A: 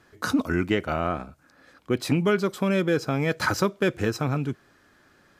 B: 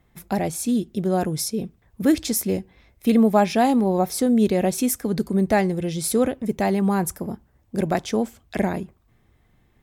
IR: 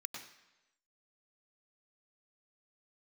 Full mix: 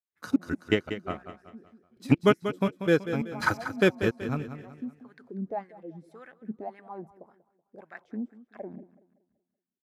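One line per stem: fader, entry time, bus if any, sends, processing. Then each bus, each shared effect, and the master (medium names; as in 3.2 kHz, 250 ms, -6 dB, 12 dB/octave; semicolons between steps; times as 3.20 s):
-1.0 dB, 0.00 s, no send, echo send -10.5 dB, trance gate "..xx.x..xx" 168 bpm -24 dB; upward expansion 2.5:1, over -38 dBFS
-13.5 dB, 0.00 s, no send, echo send -18 dB, gate with hold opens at -48 dBFS; wah-wah 1.8 Hz 220–1800 Hz, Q 4.5; auto duck -9 dB, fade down 0.70 s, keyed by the first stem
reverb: none
echo: feedback delay 189 ms, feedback 39%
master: level rider gain up to 5.5 dB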